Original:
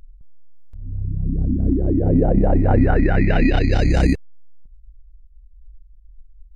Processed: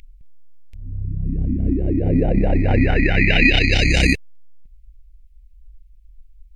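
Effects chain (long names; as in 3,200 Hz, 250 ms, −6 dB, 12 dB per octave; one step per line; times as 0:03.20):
high shelf with overshoot 1,700 Hz +10.5 dB, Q 3
level −1 dB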